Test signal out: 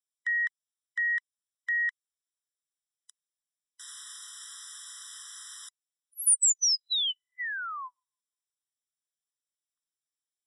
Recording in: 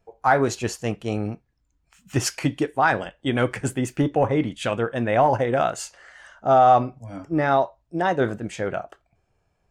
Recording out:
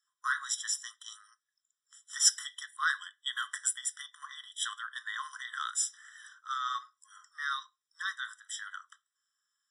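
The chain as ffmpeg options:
ffmpeg -i in.wav -af "aderivative,aresample=22050,aresample=44100,afftfilt=real='re*eq(mod(floor(b*sr/1024/1000),2),1)':imag='im*eq(mod(floor(b*sr/1024/1000),2),1)':win_size=1024:overlap=0.75,volume=7dB" out.wav

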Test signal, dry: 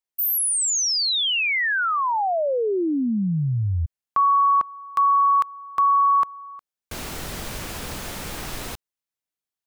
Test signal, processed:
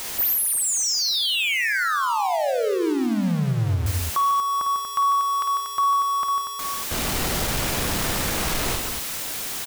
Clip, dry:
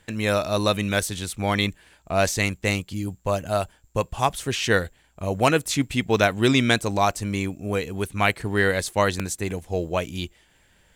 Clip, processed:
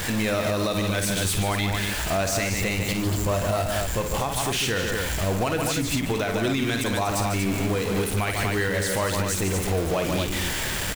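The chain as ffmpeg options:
ffmpeg -i in.wav -af "aeval=exprs='val(0)+0.5*0.0841*sgn(val(0))':channel_layout=same,aecho=1:1:52|148|180|238:0.398|0.422|0.141|0.447,alimiter=limit=-13.5dB:level=0:latency=1:release=179,volume=-2dB" out.wav

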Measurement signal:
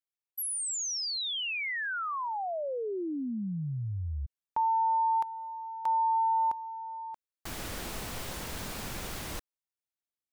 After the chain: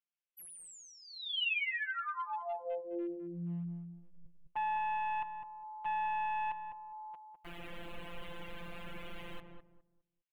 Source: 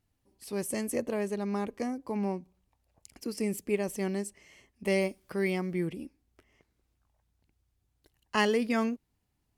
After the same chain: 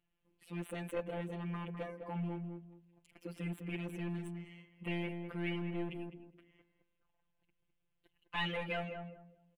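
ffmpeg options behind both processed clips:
ffmpeg -i in.wav -filter_complex "[0:a]afftfilt=real='hypot(re,im)*cos(PI*b)':imag='0':win_size=1024:overlap=0.75,aeval=exprs='clip(val(0),-1,0.0251)':channel_layout=same,highshelf=frequency=3900:width_type=q:width=3:gain=-10.5,asplit=2[link_01][link_02];[link_02]adelay=205,lowpass=frequency=890:poles=1,volume=-4.5dB,asplit=2[link_03][link_04];[link_04]adelay=205,lowpass=frequency=890:poles=1,volume=0.27,asplit=2[link_05][link_06];[link_06]adelay=205,lowpass=frequency=890:poles=1,volume=0.27,asplit=2[link_07][link_08];[link_08]adelay=205,lowpass=frequency=890:poles=1,volume=0.27[link_09];[link_03][link_05][link_07][link_09]amix=inputs=4:normalize=0[link_10];[link_01][link_10]amix=inputs=2:normalize=0,volume=-2.5dB" out.wav

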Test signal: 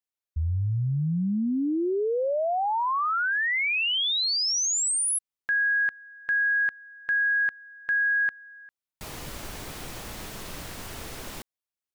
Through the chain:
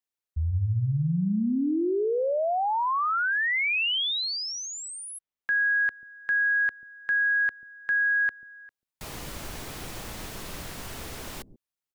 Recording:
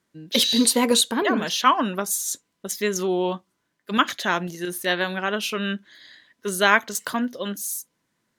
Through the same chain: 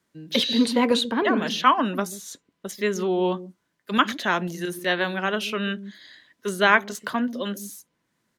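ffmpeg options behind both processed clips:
ffmpeg -i in.wav -filter_complex "[0:a]acrossover=split=420|460|4000[link_01][link_02][link_03][link_04];[link_01]aecho=1:1:138:0.376[link_05];[link_04]acompressor=threshold=-40dB:ratio=6:attack=23:release=890:knee=1:detection=peak[link_06];[link_05][link_02][link_03][link_06]amix=inputs=4:normalize=0" out.wav

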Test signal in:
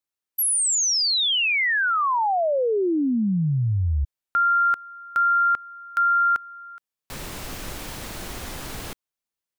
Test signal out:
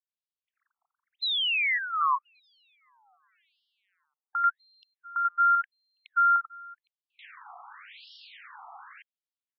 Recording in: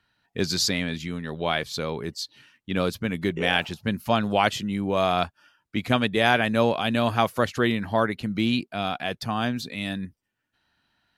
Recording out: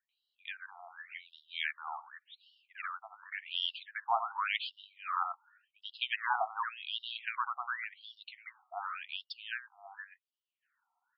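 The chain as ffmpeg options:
ffmpeg -i in.wav -filter_complex "[0:a]highshelf=frequency=2200:gain=-10.5,asplit=2[link_01][link_02];[link_02]aeval=exprs='sgn(val(0))*max(abs(val(0))-0.0075,0)':channel_layout=same,volume=-10dB[link_03];[link_01][link_03]amix=inputs=2:normalize=0,acrossover=split=1300[link_04][link_05];[link_05]adelay=90[link_06];[link_04][link_06]amix=inputs=2:normalize=0,afftfilt=real='re*between(b*sr/1024,950*pow(4000/950,0.5+0.5*sin(2*PI*0.89*pts/sr))/1.41,950*pow(4000/950,0.5+0.5*sin(2*PI*0.89*pts/sr))*1.41)':imag='im*between(b*sr/1024,950*pow(4000/950,0.5+0.5*sin(2*PI*0.89*pts/sr))/1.41,950*pow(4000/950,0.5+0.5*sin(2*PI*0.89*pts/sr))*1.41)':win_size=1024:overlap=0.75" out.wav

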